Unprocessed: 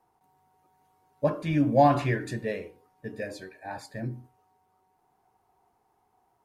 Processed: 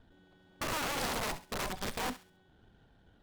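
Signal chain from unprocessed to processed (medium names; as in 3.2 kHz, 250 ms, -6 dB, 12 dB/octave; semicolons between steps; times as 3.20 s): comb filter that takes the minimum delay 0.43 ms; RIAA curve playback; peak limiter -26.5 dBFS, peak gain reduction 24.5 dB; integer overflow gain 30 dB; thinning echo 134 ms, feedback 33%, high-pass 640 Hz, level -11.5 dB; speed mistake 7.5 ips tape played at 15 ips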